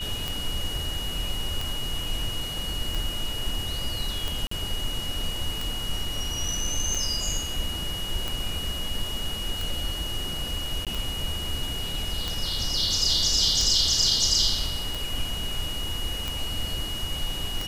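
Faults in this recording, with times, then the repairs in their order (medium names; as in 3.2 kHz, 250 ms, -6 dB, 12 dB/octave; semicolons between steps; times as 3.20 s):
tick 45 rpm
whine 2.9 kHz -32 dBFS
4.47–4.51 s: dropout 44 ms
10.85–10.87 s: dropout 17 ms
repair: de-click; band-stop 2.9 kHz, Q 30; interpolate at 4.47 s, 44 ms; interpolate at 10.85 s, 17 ms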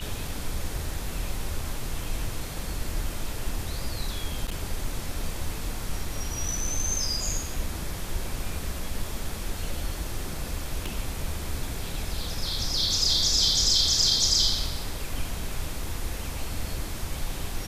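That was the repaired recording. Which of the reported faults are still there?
nothing left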